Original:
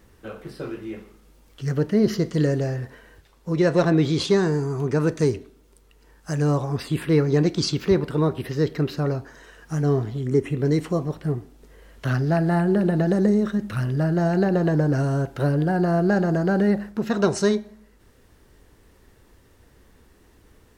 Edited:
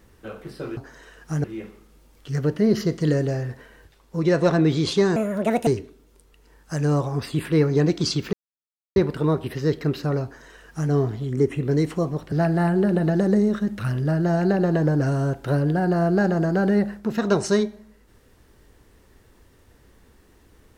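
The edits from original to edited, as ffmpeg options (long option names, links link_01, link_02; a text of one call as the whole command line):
ffmpeg -i in.wav -filter_complex "[0:a]asplit=7[link_01][link_02][link_03][link_04][link_05][link_06][link_07];[link_01]atrim=end=0.772[link_08];[link_02]atrim=start=9.178:end=9.852[link_09];[link_03]atrim=start=0.768:end=4.494[link_10];[link_04]atrim=start=4.49:end=5.24,asetpts=PTS-STARTPTS,asetrate=64827,aresample=44100[link_11];[link_05]atrim=start=5.236:end=7.9,asetpts=PTS-STARTPTS,afade=type=out:start_time=2.66:duration=0.004:curve=hsin,apad=pad_dur=0.63[link_12];[link_06]atrim=start=7.9:end=11.262,asetpts=PTS-STARTPTS,afade=type=in:duration=0.004:curve=hsin[link_13];[link_07]atrim=start=12.238[link_14];[link_08][link_09]acrossfade=duration=0.004:curve1=hsin:curve2=hsin[link_15];[link_15][link_10]acrossfade=duration=0.004:curve1=hsin:curve2=hsin[link_16];[link_16][link_11]acrossfade=duration=0.004:curve1=hsin:curve2=hsin[link_17];[link_12][link_13]concat=n=2:v=0:a=1[link_18];[link_17][link_18]acrossfade=duration=0.004:curve1=hsin:curve2=hsin[link_19];[link_19][link_14]acrossfade=duration=0.004:curve1=hsin:curve2=hsin" out.wav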